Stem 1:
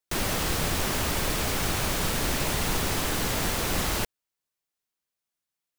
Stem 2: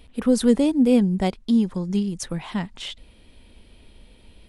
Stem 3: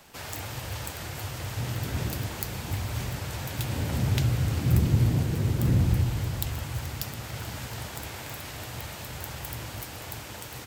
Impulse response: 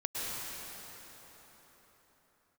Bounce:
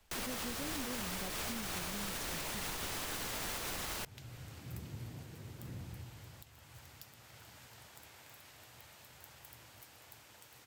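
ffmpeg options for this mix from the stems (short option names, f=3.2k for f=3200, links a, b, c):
-filter_complex "[0:a]volume=-0.5dB[a];[1:a]agate=range=-33dB:threshold=-44dB:ratio=3:detection=peak,acompressor=threshold=-19dB:ratio=6,volume=-16.5dB[b];[2:a]highpass=62,volume=-16.5dB[c];[a][c]amix=inputs=2:normalize=0,lowshelf=f=490:g=-7.5,alimiter=level_in=1dB:limit=-24dB:level=0:latency=1:release=372,volume=-1dB,volume=0dB[d];[b][d]amix=inputs=2:normalize=0,alimiter=level_in=5.5dB:limit=-24dB:level=0:latency=1:release=292,volume=-5.5dB"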